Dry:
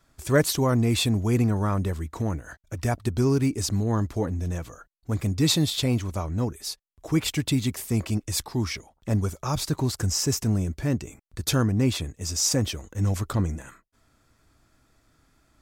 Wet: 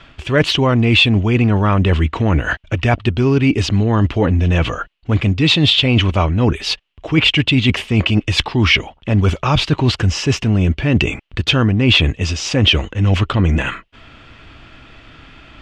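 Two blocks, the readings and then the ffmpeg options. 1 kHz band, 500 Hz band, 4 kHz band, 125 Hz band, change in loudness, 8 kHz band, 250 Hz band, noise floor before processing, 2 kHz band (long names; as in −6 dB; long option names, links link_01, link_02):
+11.5 dB, +9.0 dB, +14.5 dB, +10.5 dB, +10.5 dB, −3.0 dB, +9.5 dB, −66 dBFS, +17.5 dB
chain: -af "areverse,acompressor=threshold=-33dB:ratio=6,areverse,lowpass=frequency=2900:width_type=q:width=5.4,alimiter=level_in=22dB:limit=-1dB:release=50:level=0:latency=1,volume=-1dB"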